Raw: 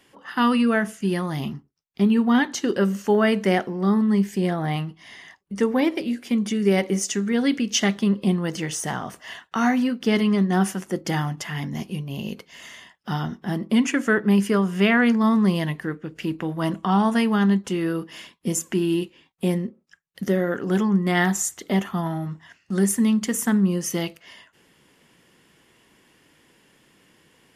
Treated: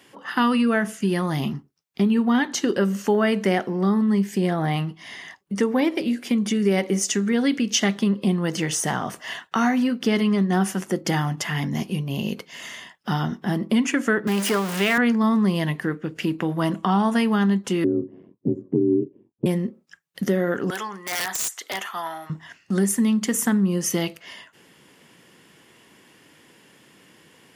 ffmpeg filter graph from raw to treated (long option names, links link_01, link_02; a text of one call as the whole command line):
ffmpeg -i in.wav -filter_complex "[0:a]asettb=1/sr,asplit=3[link_01][link_02][link_03];[link_01]atrim=end=14.274[link_04];[link_02]atrim=start=14.27:end=14.98,asetpts=PTS-STARTPTS,afade=type=in:duration=0.004:curve=qsin,afade=type=out:start_time=0.706:duration=0.004:curve=qsin,aeval=exprs='val(0)+0.5*0.075*sgn(val(0))':channel_layout=same,highpass=frequency=500:poles=1[link_05];[link_03]atrim=start=14.976[link_06];[link_04][link_05]acrossfade=duration=0.004:curve1=hsin:curve2=qsin[link_07];[link_07][link_06]acrossfade=duration=0.004:curve1=qsin:curve2=hsin,asettb=1/sr,asplit=3[link_08][link_09][link_10];[link_08]atrim=end=17.844[link_11];[link_09]atrim=start=17.84:end=19.46,asetpts=PTS-STARTPTS,afade=type=in:duration=0.004:curve=qsin,afade=type=out:start_time=1.616:duration=0.004:curve=qsin,lowpass=frequency=330:width_type=q:width=2.4,aeval=exprs='val(0)*sin(2*PI*47*n/s)':channel_layout=same[link_12];[link_10]atrim=start=19.456[link_13];[link_11][link_12]acrossfade=duration=0.004:curve1=hsin:curve2=qsin[link_14];[link_14][link_13]acrossfade=duration=0.004:curve1=qsin:curve2=hsin,asettb=1/sr,asplit=3[link_15][link_16][link_17];[link_15]atrim=end=20.704[link_18];[link_16]atrim=start=20.7:end=22.3,asetpts=PTS-STARTPTS,afade=type=in:duration=0.004:curve=qsin,afade=type=out:start_time=1.596:duration=0.004:curve=qsin,highpass=910,acompressor=threshold=-29dB:ratio=2:attack=3.2:release=140:knee=1:detection=peak,aeval=exprs='(mod(15*val(0)+1,2)-1)/15':channel_layout=same[link_19];[link_17]atrim=start=22.296[link_20];[link_18][link_19]acrossfade=duration=0.004:curve1=hsin:curve2=qsin[link_21];[link_21][link_20]acrossfade=duration=0.004:curve1=qsin:curve2=hsin,acompressor=threshold=-26dB:ratio=2,highpass=98,volume=5dB" out.wav